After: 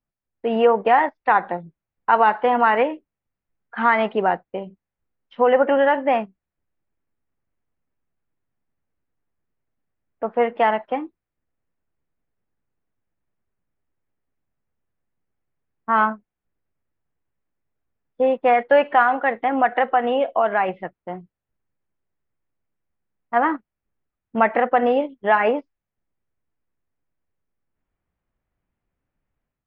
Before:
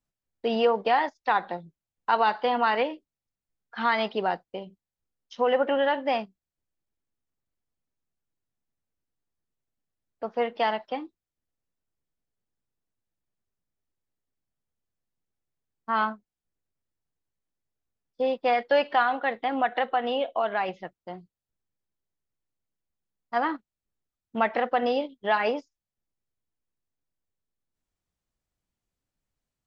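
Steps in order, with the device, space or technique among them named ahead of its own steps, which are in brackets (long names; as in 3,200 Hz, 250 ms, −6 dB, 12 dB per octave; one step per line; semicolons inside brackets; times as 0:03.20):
action camera in a waterproof case (low-pass filter 2,400 Hz 24 dB per octave; automatic gain control gain up to 7.5 dB; AAC 128 kbit/s 48,000 Hz)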